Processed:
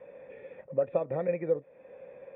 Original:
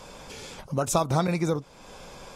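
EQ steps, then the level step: cascade formant filter e; high-pass 110 Hz 12 dB/octave; distance through air 260 m; +6.5 dB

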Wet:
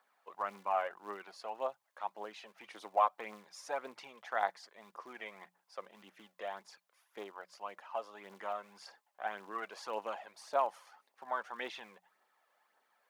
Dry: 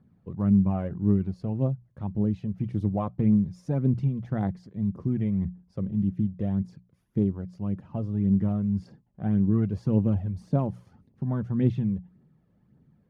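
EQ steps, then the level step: high-pass 790 Hz 24 dB/octave; +9.0 dB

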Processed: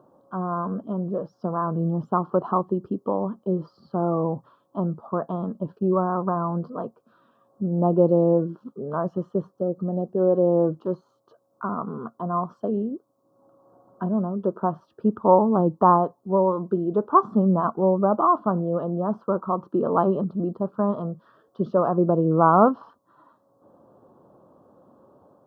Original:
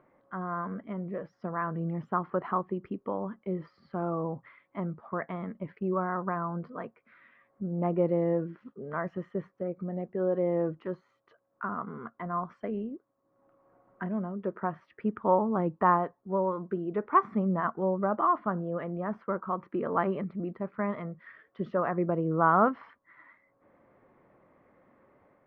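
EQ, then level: high-pass 85 Hz; Butterworth band-stop 2.1 kHz, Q 0.75; +8.5 dB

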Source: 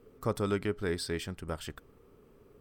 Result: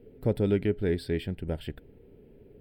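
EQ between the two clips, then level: treble shelf 2.2 kHz -11 dB; static phaser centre 2.8 kHz, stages 4; +7.0 dB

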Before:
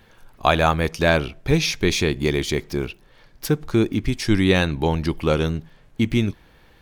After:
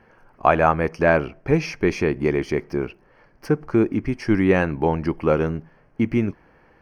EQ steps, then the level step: boxcar filter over 12 samples; bass shelf 130 Hz -12 dB; +3.0 dB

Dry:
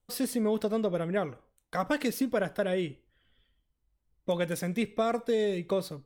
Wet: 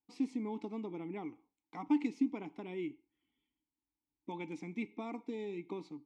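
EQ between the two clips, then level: vowel filter u; resonant low-pass 7 kHz, resonance Q 2.9; +3.5 dB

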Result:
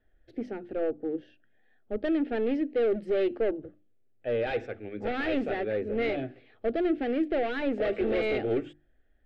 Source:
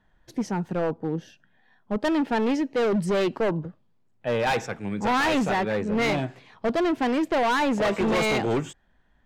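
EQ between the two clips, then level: distance through air 440 m; hum notches 50/100/150/200/250/300/350 Hz; static phaser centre 410 Hz, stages 4; 0.0 dB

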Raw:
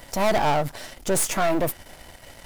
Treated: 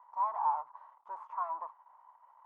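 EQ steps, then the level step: Butterworth band-pass 1 kHz, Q 4.9; 0.0 dB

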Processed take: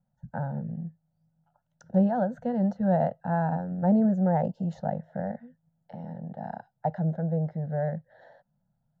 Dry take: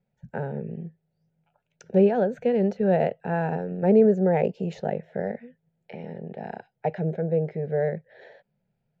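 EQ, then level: treble shelf 2.2 kHz -9.5 dB; static phaser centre 1 kHz, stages 4; +3.0 dB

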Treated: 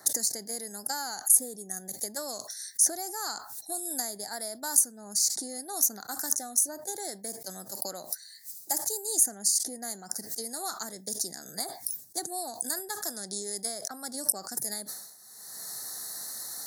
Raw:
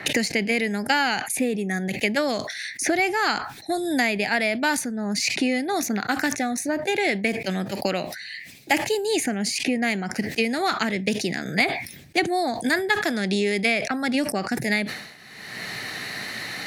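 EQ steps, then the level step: Butterworth band-stop 2.6 kHz, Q 0.51; pre-emphasis filter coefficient 0.97; +7.0 dB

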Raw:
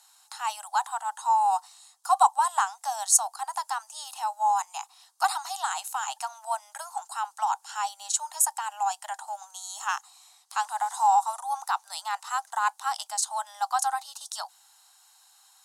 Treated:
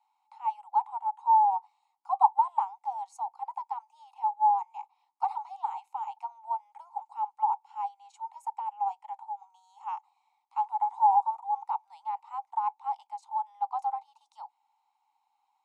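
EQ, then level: dynamic bell 740 Hz, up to +3 dB, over -32 dBFS, Q 0.82; vowel filter u; tilt shelf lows +8.5 dB, about 1.2 kHz; +3.0 dB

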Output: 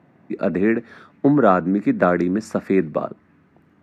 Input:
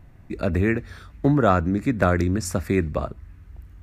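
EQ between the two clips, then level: high-pass 180 Hz 24 dB/octave; treble shelf 2.6 kHz -11.5 dB; treble shelf 8.6 kHz -12 dB; +5.0 dB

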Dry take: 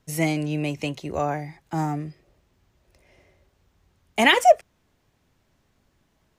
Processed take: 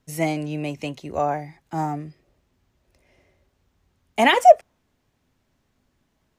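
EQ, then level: dynamic bell 740 Hz, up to +7 dB, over -33 dBFS, Q 0.96; peaking EQ 250 Hz +5 dB 0.22 oct; -3.0 dB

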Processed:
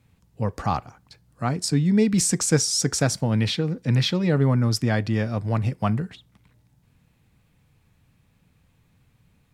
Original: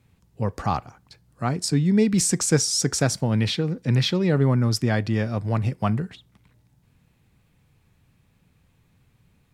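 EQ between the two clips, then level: band-stop 380 Hz, Q 12; 0.0 dB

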